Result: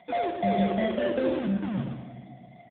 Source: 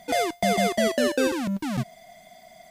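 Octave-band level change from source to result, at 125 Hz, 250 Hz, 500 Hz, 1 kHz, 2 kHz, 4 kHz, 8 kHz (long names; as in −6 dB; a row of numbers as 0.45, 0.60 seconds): 0.0 dB, −1.0 dB, −3.0 dB, −3.0 dB, −8.5 dB, −11.0 dB, below −40 dB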